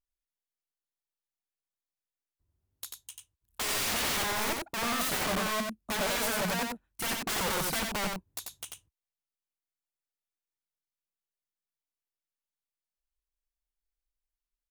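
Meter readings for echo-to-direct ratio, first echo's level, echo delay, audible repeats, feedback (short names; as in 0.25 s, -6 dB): -3.5 dB, -3.5 dB, 91 ms, 1, no steady repeat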